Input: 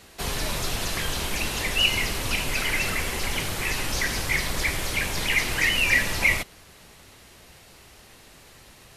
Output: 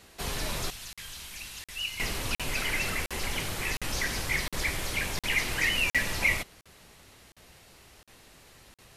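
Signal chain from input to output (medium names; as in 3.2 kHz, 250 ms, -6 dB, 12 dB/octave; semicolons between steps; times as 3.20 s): 0.70–2.00 s: amplifier tone stack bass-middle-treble 5-5-5; crackling interface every 0.71 s, samples 2048, zero, from 0.93 s; trim -4.5 dB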